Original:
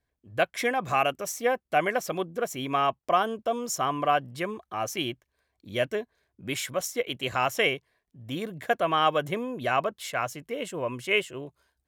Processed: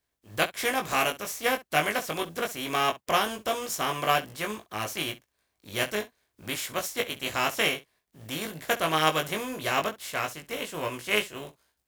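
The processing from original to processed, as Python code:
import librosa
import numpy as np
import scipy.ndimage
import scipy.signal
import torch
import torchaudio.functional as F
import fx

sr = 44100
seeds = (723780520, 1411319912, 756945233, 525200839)

y = fx.spec_flatten(x, sr, power=0.54)
y = fx.room_early_taps(y, sr, ms=(19, 66), db=(-4.0, -17.0))
y = F.gain(torch.from_numpy(y), -2.5).numpy()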